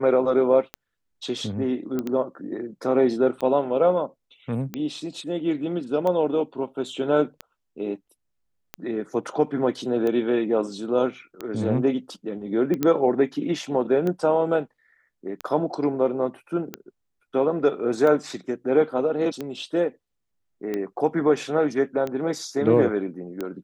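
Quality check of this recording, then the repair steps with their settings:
tick 45 rpm -16 dBFS
1.99 pop -15 dBFS
12.83 pop -9 dBFS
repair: de-click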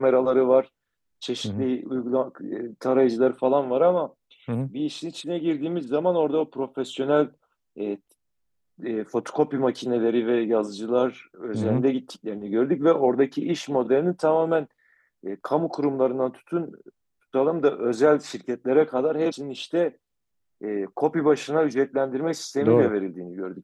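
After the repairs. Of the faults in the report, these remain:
none

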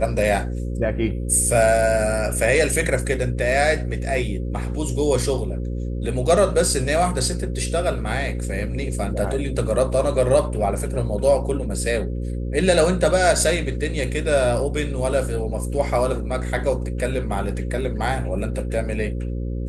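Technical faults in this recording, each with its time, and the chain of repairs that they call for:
buzz 60 Hz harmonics 9 -26 dBFS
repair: de-hum 60 Hz, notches 9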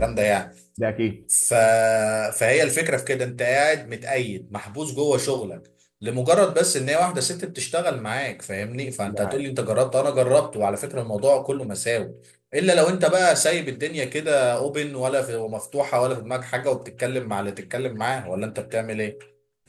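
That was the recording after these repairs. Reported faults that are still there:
none

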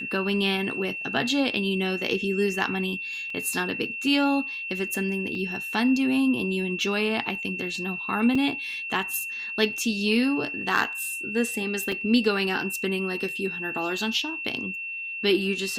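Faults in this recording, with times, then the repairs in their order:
tone 2700 Hz -31 dBFS
3.3 gap 3.4 ms
5.35 gap 2.3 ms
8.35 gap 3.6 ms
11.92 gap 2.8 ms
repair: notch 2700 Hz, Q 30; interpolate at 3.3, 3.4 ms; interpolate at 5.35, 2.3 ms; interpolate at 8.35, 3.6 ms; interpolate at 11.92, 2.8 ms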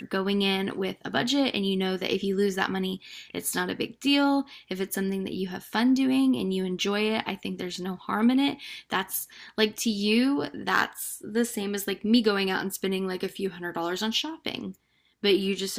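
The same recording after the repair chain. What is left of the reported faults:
none

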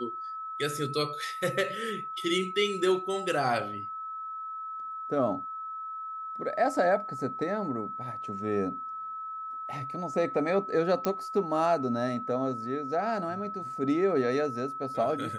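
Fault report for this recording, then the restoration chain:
tone 1300 Hz -35 dBFS
11.05 pop -14 dBFS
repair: de-click; notch 1300 Hz, Q 30

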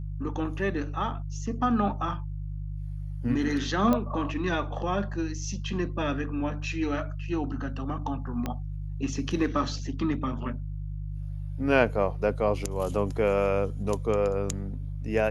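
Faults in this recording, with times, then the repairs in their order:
hum 50 Hz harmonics 3 -34 dBFS
3.93 pop -13 dBFS
8.46 pop -17 dBFS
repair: de-click; de-hum 50 Hz, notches 3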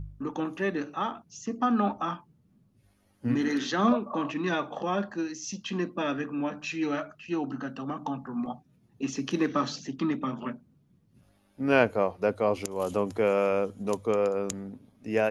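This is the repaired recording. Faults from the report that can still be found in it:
8.46 pop

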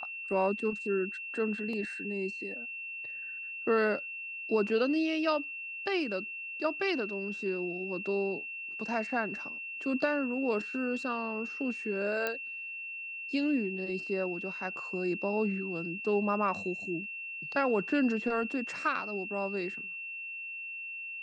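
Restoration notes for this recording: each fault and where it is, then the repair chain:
tone 2700 Hz -38 dBFS
12.27 pop -17 dBFS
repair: de-click; notch 2700 Hz, Q 30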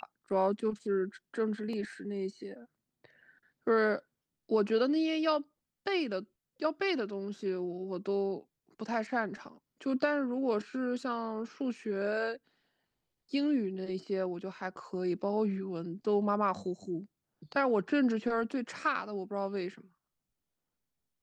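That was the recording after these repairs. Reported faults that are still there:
none

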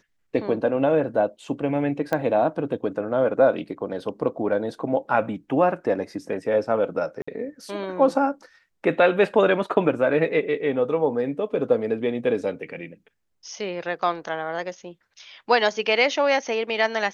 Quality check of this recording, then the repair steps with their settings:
2.13 pop -12 dBFS
7.22–7.28 gap 55 ms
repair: de-click; interpolate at 7.22, 55 ms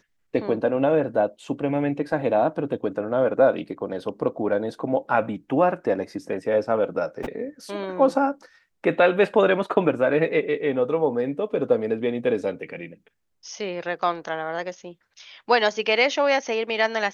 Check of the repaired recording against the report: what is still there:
none

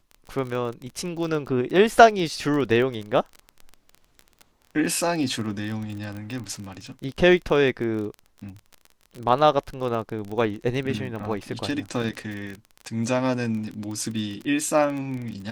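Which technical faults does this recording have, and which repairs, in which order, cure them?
crackle 29/s -30 dBFS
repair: de-click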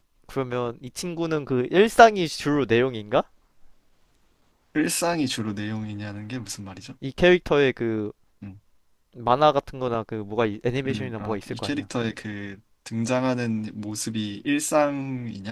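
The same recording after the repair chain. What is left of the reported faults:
none

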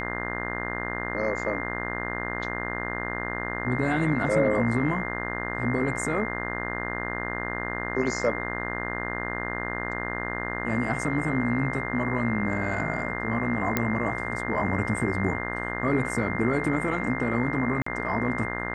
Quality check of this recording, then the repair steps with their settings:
buzz 60 Hz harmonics 34 -33 dBFS
tone 2100 Hz -33 dBFS
13.77 pop -8 dBFS
17.82–17.86 gap 44 ms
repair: de-click; notch 2100 Hz, Q 30; de-hum 60 Hz, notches 34; interpolate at 17.82, 44 ms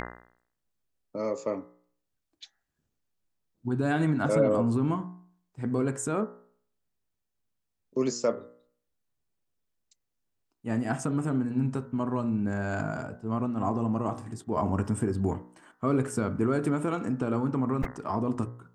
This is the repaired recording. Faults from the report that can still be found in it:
none

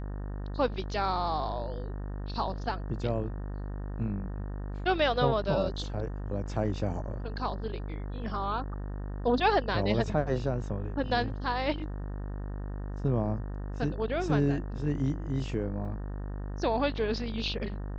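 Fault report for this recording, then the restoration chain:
buzz 50 Hz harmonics 37 -36 dBFS
15.85 gap 2.3 ms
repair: de-hum 50 Hz, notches 37; interpolate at 15.85, 2.3 ms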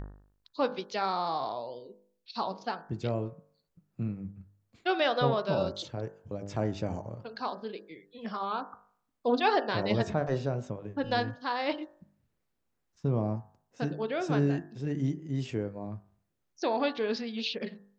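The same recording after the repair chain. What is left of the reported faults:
none

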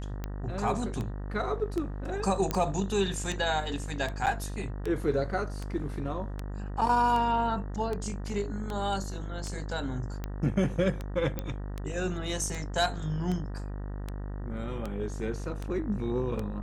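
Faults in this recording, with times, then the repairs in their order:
buzz 50 Hz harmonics 38 -36 dBFS
tick 78 rpm -21 dBFS
2.51 pop -14 dBFS
4.26–4.27 gap 7.7 ms
11.39 pop -18 dBFS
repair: de-click; de-hum 50 Hz, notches 38; interpolate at 4.26, 7.7 ms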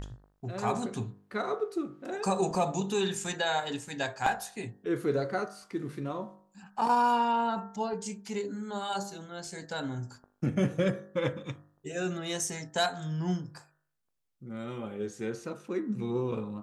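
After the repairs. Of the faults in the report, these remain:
none

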